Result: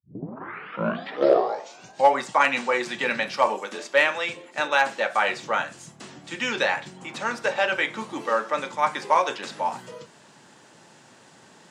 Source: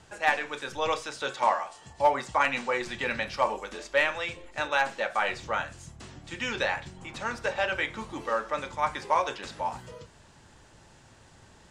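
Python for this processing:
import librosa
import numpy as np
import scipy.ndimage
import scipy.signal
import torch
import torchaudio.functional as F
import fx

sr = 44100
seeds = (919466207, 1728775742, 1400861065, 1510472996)

y = fx.tape_start_head(x, sr, length_s=2.16)
y = scipy.signal.sosfilt(scipy.signal.butter(4, 160.0, 'highpass', fs=sr, output='sos'), y)
y = y * 10.0 ** (5.0 / 20.0)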